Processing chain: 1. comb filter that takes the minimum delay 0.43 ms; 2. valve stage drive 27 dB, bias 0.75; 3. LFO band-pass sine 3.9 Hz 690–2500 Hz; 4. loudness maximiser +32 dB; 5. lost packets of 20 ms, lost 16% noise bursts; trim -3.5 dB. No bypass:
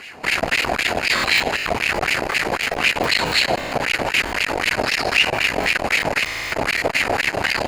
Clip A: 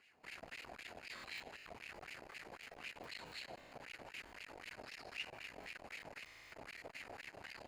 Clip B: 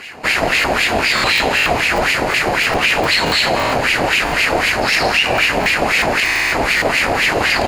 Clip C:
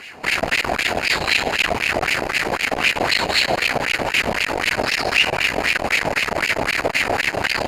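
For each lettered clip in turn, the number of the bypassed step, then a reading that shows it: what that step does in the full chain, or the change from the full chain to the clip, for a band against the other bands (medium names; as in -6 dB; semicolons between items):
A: 4, crest factor change +4.5 dB; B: 2, crest factor change -3.0 dB; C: 5, momentary loudness spread change -1 LU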